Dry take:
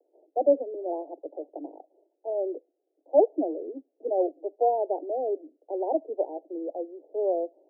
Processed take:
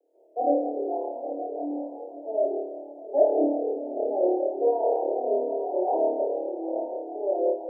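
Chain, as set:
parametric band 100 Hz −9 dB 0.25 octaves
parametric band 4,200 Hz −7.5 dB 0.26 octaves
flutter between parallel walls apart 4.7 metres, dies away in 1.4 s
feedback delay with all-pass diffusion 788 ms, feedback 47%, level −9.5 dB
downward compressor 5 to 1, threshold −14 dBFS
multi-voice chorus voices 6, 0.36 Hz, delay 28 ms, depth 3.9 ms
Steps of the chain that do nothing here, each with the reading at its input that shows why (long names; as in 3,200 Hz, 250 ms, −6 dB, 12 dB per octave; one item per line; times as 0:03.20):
parametric band 100 Hz: nothing at its input below 240 Hz
parametric band 4,200 Hz: nothing at its input above 960 Hz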